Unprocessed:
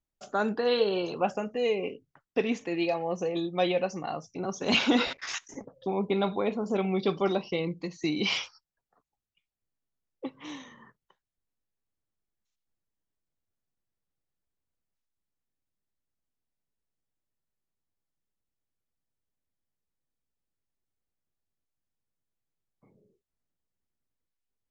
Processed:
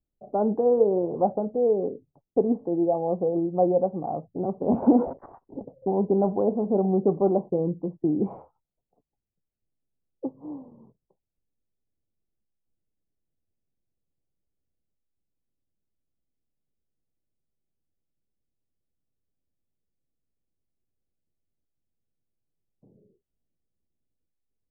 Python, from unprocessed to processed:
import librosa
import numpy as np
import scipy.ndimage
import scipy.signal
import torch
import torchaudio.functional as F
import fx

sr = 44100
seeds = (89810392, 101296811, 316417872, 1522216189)

y = fx.env_lowpass(x, sr, base_hz=530.0, full_db=-23.0)
y = scipy.signal.sosfilt(scipy.signal.butter(6, 830.0, 'lowpass', fs=sr, output='sos'), y)
y = fx.band_squash(y, sr, depth_pct=100, at=(4.82, 5.26))
y = y * librosa.db_to_amplitude(5.5)